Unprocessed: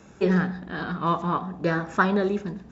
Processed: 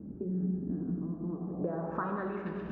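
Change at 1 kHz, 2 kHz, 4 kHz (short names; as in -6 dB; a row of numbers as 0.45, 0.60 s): -14.0 dB, -18.5 dB, under -25 dB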